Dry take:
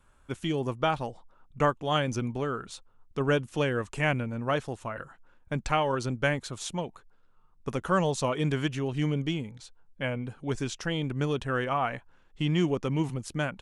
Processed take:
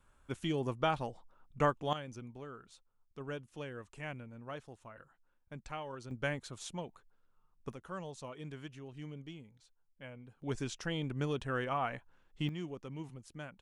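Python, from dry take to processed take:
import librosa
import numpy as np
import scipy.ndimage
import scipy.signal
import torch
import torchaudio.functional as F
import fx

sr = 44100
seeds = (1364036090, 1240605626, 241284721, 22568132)

y = fx.gain(x, sr, db=fx.steps((0.0, -5.0), (1.93, -16.5), (6.11, -9.0), (7.73, -18.0), (10.42, -6.5), (12.49, -16.0)))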